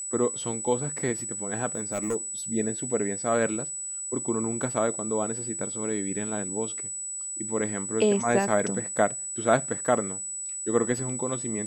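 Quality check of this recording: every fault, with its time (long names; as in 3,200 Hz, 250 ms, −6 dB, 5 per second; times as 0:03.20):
whistle 7,900 Hz −32 dBFS
0:01.75–0:02.16: clipping −23.5 dBFS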